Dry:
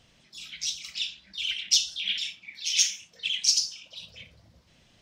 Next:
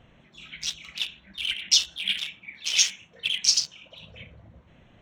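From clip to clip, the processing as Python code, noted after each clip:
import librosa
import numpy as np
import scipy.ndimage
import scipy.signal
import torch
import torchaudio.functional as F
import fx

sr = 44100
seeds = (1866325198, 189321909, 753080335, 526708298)

y = fx.wiener(x, sr, points=9)
y = fx.high_shelf(y, sr, hz=4200.0, db=-8.0)
y = y * librosa.db_to_amplitude(7.5)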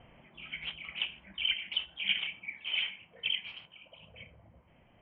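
y = fx.rider(x, sr, range_db=3, speed_s=0.5)
y = scipy.signal.sosfilt(scipy.signal.cheby1(6, 6, 3200.0, 'lowpass', fs=sr, output='sos'), y)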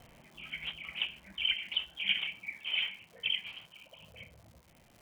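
y = fx.dmg_crackle(x, sr, seeds[0], per_s=230.0, level_db=-48.0)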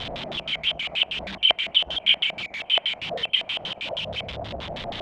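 y = x + 0.5 * 10.0 ** (-31.0 / 20.0) * np.sign(x)
y = fx.filter_lfo_lowpass(y, sr, shape='square', hz=6.3, low_hz=670.0, high_hz=3500.0, q=5.2)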